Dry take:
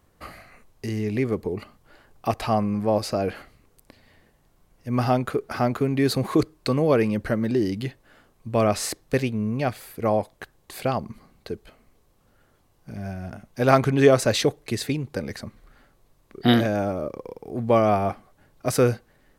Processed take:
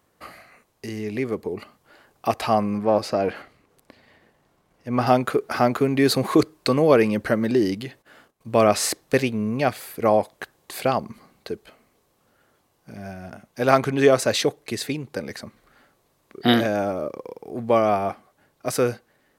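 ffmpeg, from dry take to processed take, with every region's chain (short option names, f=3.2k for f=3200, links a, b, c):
-filter_complex "[0:a]asettb=1/sr,asplit=3[a][b][c];[a]atrim=end=2.784[d];[b]atrim=start=2.78:end=5.07,asetpts=PTS-STARTPTS,afade=t=in:d=0.004:c=qsin,afade=t=out:st=2.286:d=0.004:c=qsin,aeval=exprs='if(lt(val(0),0),0.708*val(0),val(0))':c=same,aemphasis=mode=reproduction:type=cd[e];[c]atrim=start=5.066[f];[d][e]acrossfade=d=0.004:c1=hsin:c2=qsin[g];[g][f]acrossfade=d=0.004:c1=qsin:c2=hsin,asettb=1/sr,asplit=3[h][i][j];[h]atrim=end=7.744[k];[i]atrim=start=7.74:end=8.48,asetpts=PTS-STARTPTS,afade=t=in:d=0.004:c=qsin,afade=t=out:st=0.736:d=0.004:c=qsin,agate=range=-15dB:threshold=-59dB:ratio=16:release=100:detection=peak,acompressor=threshold=-34dB:ratio=2:attack=3.2:release=140:knee=1:detection=peak[l];[j]atrim=start=8.476[m];[k][l]acrossfade=d=0.004:c1=hsin:c2=qsin[n];[n][m]acrossfade=d=0.004:c1=qsin:c2=hsin,highpass=f=250:p=1,dynaudnorm=f=270:g=17:m=6.5dB"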